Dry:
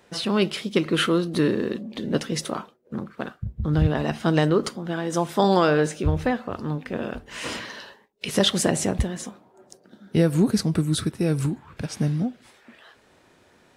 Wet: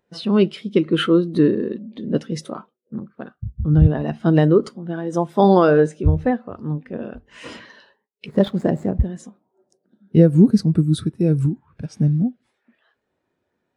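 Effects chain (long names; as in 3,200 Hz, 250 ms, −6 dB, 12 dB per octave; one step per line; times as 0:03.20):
0:08.26–0:09.05: running median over 15 samples
every bin expanded away from the loudest bin 1.5 to 1
level +6 dB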